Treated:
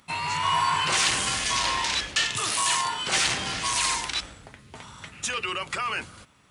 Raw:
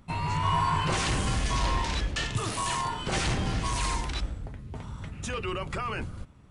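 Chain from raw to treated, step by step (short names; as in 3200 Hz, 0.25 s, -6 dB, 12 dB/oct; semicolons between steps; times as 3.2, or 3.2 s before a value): HPF 200 Hz 6 dB/oct; tilt shelf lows -7.5 dB; in parallel at -8.5 dB: one-sided clip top -21 dBFS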